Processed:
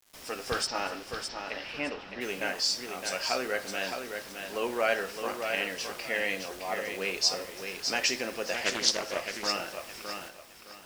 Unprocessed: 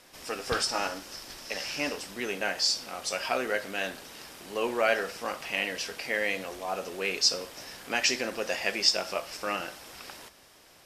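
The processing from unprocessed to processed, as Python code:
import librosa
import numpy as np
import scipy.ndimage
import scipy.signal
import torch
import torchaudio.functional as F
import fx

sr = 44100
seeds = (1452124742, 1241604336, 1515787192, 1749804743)

y = fx.quant_dither(x, sr, seeds[0], bits=8, dither='none')
y = fx.lowpass(y, sr, hz=fx.line((0.66, 5700.0), (2.2, 3000.0)), slope=24, at=(0.66, 2.2), fade=0.02)
y = fx.echo_feedback(y, sr, ms=614, feedback_pct=26, wet_db=-6.5)
y = fx.doppler_dist(y, sr, depth_ms=0.5, at=(8.54, 9.47))
y = y * librosa.db_to_amplitude(-2.0)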